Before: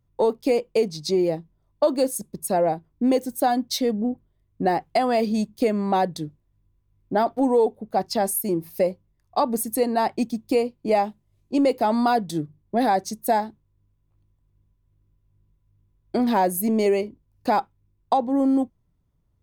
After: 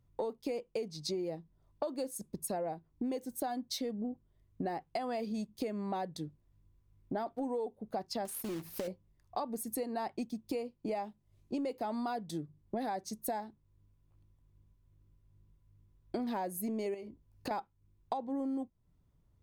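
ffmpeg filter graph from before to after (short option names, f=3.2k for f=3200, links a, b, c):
-filter_complex "[0:a]asettb=1/sr,asplit=3[a][b][c];[a]atrim=end=8.254[d];[b]atrim=start=8.25:end=8.88,asetpts=PTS-STARTPTS,afade=t=in:d=0.004:c=qsin,afade=t=out:st=0.626:d=0.004:c=qsin,acompressor=threshold=-25dB:ratio=16:attack=3.2:release=140:knee=1:detection=peak,acrusher=bits=2:mode=log:mix=0:aa=0.000001[e];[c]atrim=start=8.876[f];[d][e]acrossfade=d=0.004:c1=hsin:c2=qsin[g];[g][f]acrossfade=d=0.004:c1=qsin:c2=hsin,asettb=1/sr,asplit=3[h][i][j];[h]atrim=end=16.944[k];[i]atrim=start=16.94:end=17.51,asetpts=PTS-STARTPTS,afade=t=in:d=0.004:c=qsin,afade=t=out:st=0.566:d=0.004:c=qsin,asplit=2[l][m];[m]adelay=18,volume=-10.5dB[n];[l][n]amix=inputs=2:normalize=0,atrim=end_sample=25137,acompressor=threshold=-28dB:ratio=6:attack=3.2:release=140:knee=1:detection=peak[o];[j]atrim=start=17.506[p];[k][o]acrossfade=d=0.004:c1=hsin:c2=qsin[q];[q][p]acrossfade=d=0.004:c1=qsin:c2=hsin,highshelf=f=11k:g=-3.5,acompressor=threshold=-36dB:ratio=4,volume=-1dB"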